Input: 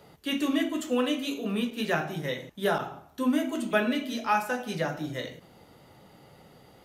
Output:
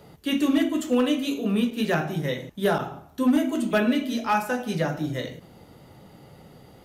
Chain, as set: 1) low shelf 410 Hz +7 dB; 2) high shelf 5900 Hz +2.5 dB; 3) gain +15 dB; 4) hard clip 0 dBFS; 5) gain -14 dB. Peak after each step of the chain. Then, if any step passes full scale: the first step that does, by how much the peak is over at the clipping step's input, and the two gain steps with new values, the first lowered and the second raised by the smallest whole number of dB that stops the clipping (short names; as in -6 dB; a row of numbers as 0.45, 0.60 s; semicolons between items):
-9.0, -9.0, +6.0, 0.0, -14.0 dBFS; step 3, 6.0 dB; step 3 +9 dB, step 5 -8 dB